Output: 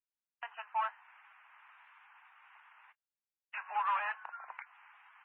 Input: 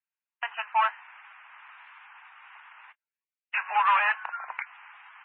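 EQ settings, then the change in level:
dynamic equaliser 2,300 Hz, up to −4 dB, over −41 dBFS, Q 1.4
spectral tilt −2 dB per octave
low-shelf EQ 480 Hz −4.5 dB
−8.5 dB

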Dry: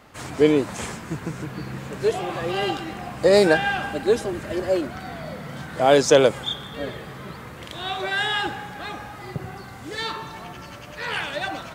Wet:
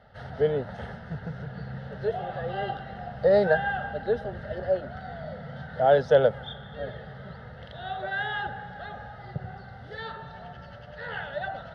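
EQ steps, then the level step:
dynamic equaliser 5,200 Hz, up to −7 dB, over −43 dBFS, Q 0.92
head-to-tape spacing loss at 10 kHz 26 dB
phaser with its sweep stopped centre 1,600 Hz, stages 8
0.0 dB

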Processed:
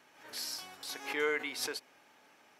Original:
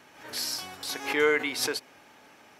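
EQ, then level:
parametric band 79 Hz −5.5 dB 0.98 octaves
low-shelf EQ 330 Hz −4.5 dB
−7.5 dB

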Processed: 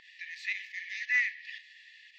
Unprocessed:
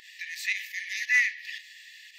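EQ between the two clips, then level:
high-frequency loss of the air 170 metres
−3.0 dB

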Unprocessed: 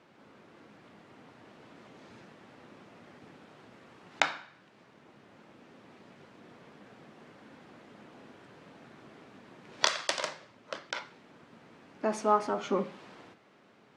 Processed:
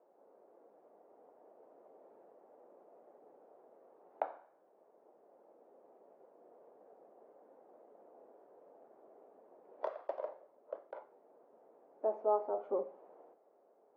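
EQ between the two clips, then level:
flat-topped band-pass 570 Hz, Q 1.5
−1.5 dB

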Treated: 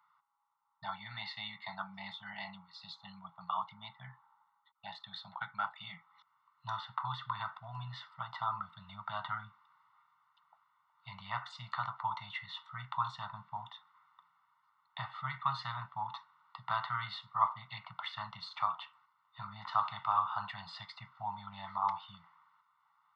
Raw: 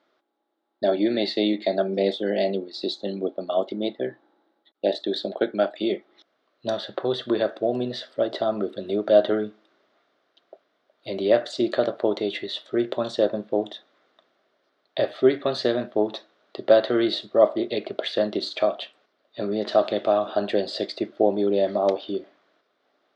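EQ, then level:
Savitzky-Golay smoothing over 65 samples
Chebyshev band-stop filter 170–910 Hz, order 5
low shelf with overshoot 250 Hz −10 dB, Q 1.5
+8.0 dB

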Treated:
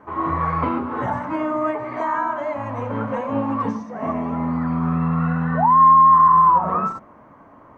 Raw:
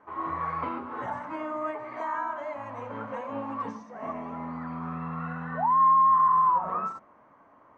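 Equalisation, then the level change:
low-shelf EQ 320 Hz +10.5 dB
+7.5 dB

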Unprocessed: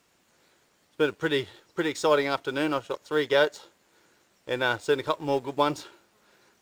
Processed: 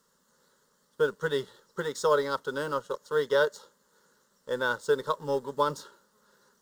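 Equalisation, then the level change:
phaser with its sweep stopped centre 480 Hz, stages 8
0.0 dB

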